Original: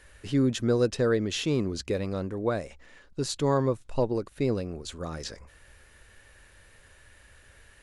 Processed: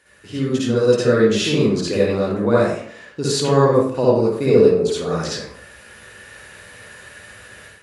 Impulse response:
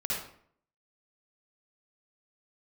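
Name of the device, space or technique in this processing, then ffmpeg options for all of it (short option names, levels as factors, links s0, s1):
far laptop microphone: -filter_complex "[0:a]asettb=1/sr,asplit=3[s0][s1][s2];[s0]atrim=end=4.484[s3];[s1]atrim=start=4.48:end=5.02,asetpts=PTS-STARTPTS,afade=t=in:d=0.004:c=qsin,afade=t=out:st=0.536:d=0.004:c=qsin,equalizer=f=430:t=o:w=0.23:g=15[s4];[s2]atrim=start=5.016[s5];[s3][s4]acrossfade=d=0.004:c1=hsin:c2=qsin[s6];[s6][s5]acrossfade=d=0.004:c1=qsin:c2=hsin[s7];[1:a]atrim=start_sample=2205[s8];[s7][s8]afir=irnorm=-1:irlink=0,highpass=140,dynaudnorm=f=590:g=3:m=3.55"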